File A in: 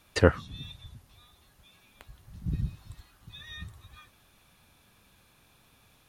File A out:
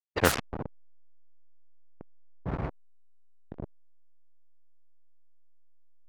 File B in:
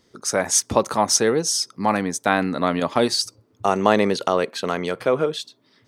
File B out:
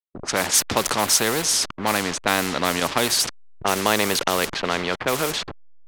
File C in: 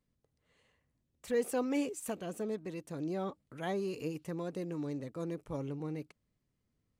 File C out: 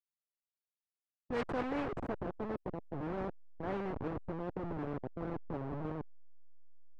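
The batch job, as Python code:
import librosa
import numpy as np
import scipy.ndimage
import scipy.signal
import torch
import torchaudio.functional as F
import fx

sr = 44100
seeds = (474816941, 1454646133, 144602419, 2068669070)

y = fx.delta_hold(x, sr, step_db=-33.5)
y = fx.low_shelf(y, sr, hz=160.0, db=-6.0)
y = fx.env_lowpass(y, sr, base_hz=320.0, full_db=-17.0)
y = fx.spectral_comp(y, sr, ratio=2.0)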